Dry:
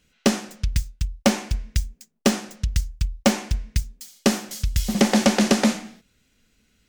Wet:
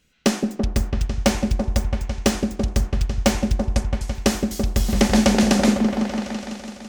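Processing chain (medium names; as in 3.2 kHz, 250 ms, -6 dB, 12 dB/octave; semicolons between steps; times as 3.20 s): 3.57–4.15 s: low-pass 11 kHz 24 dB/octave; delay with an opening low-pass 167 ms, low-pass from 400 Hz, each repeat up 1 oct, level -3 dB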